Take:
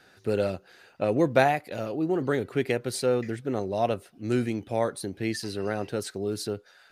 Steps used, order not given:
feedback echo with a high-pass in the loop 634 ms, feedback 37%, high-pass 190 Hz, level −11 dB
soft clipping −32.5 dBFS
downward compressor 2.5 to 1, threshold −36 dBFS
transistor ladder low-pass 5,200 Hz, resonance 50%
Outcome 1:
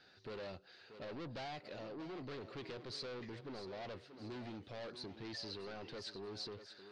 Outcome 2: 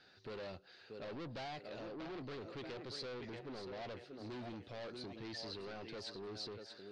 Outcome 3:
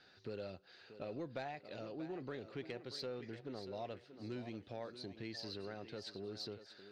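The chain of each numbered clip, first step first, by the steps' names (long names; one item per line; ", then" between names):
soft clipping, then feedback echo with a high-pass in the loop, then downward compressor, then transistor ladder low-pass
feedback echo with a high-pass in the loop, then soft clipping, then downward compressor, then transistor ladder low-pass
downward compressor, then transistor ladder low-pass, then soft clipping, then feedback echo with a high-pass in the loop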